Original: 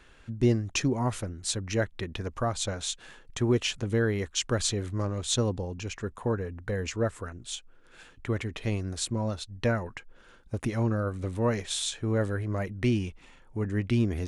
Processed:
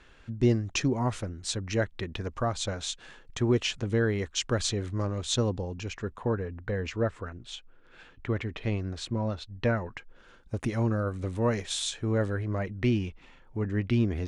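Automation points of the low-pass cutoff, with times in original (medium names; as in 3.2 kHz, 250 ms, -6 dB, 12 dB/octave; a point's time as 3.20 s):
5.73 s 7 kHz
6.47 s 3.9 kHz
9.61 s 3.9 kHz
10.60 s 9.1 kHz
11.94 s 9.1 kHz
12.61 s 4.8 kHz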